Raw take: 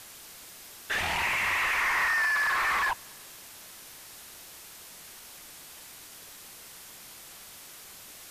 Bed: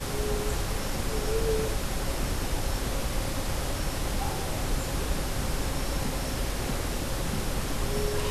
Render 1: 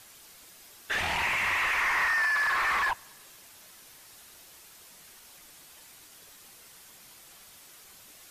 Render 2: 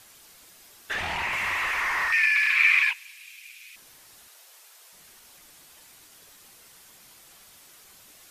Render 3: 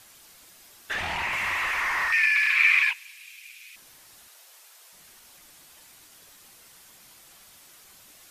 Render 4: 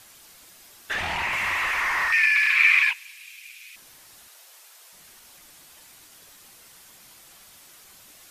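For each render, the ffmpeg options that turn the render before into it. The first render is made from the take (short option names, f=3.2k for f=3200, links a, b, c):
-af "afftdn=nr=6:nf=-48"
-filter_complex "[0:a]asettb=1/sr,asplit=3[a][b][c];[a]atrim=end=0.934[d];[b]atrim=start=0.93:end=1.33,asetpts=PTS-STARTPTS,afade=t=in:d=0.004:c=qsin,afade=t=out:st=0.396:d=0.004:c=qsin,highshelf=f=5.7k:g=-6[e];[c]atrim=start=1.326[f];[d][e]acrossfade=d=0.004:c1=hsin:c2=qsin[g];[g][f]acrossfade=d=0.004:c1=qsin:c2=hsin,asettb=1/sr,asplit=3[h][i][j];[h]atrim=end=2.124[k];[i]atrim=start=2.12:end=3.76,asetpts=PTS-STARTPTS,afade=t=in:d=0.004:c=qsin,afade=t=out:st=1.636:d=0.004:c=qsin,highpass=f=2.4k:t=q:w=11[l];[j]atrim=start=3.756[m];[k][l]acrossfade=d=0.004:c1=hsin:c2=qsin[n];[n][m]acrossfade=d=0.004:c1=qsin:c2=hsin,asettb=1/sr,asplit=3[o][p][q];[o]atrim=end=4.284[r];[p]atrim=start=4.28:end=4.93,asetpts=PTS-STARTPTS,afade=t=in:d=0.004:c=qsin,afade=t=out:st=0.646:d=0.004:c=qsin,highpass=f=470:w=0.5412,highpass=f=470:w=1.3066[s];[q]atrim=start=4.926[t];[r][s]acrossfade=d=0.004:c1=hsin:c2=qsin[u];[u][t]acrossfade=d=0.004:c1=qsin:c2=hsin"
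-af "equalizer=f=430:t=o:w=0.28:g=-2.5"
-af "volume=2dB"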